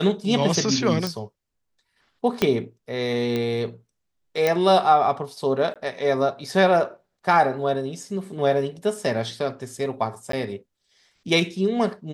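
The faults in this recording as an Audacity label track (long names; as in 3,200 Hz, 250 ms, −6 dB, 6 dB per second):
1.070000	1.070000	click
2.420000	2.420000	click −6 dBFS
3.360000	3.360000	click −14 dBFS
4.470000	4.470000	click −8 dBFS
5.740000	5.760000	drop-out 17 ms
10.320000	10.330000	drop-out 13 ms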